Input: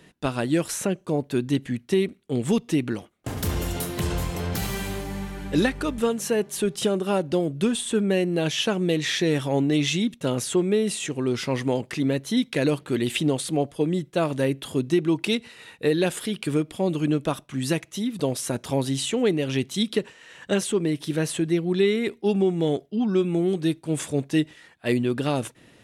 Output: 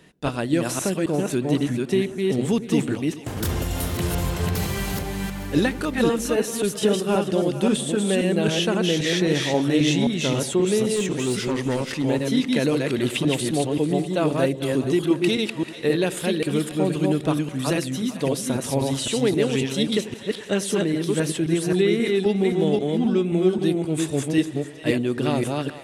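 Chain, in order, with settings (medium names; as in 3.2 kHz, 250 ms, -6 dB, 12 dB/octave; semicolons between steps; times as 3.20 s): chunks repeated in reverse 265 ms, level -2 dB; 10.96–12.04 s: hard clipper -18.5 dBFS, distortion -28 dB; two-band feedback delay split 540 Hz, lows 92 ms, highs 441 ms, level -14.5 dB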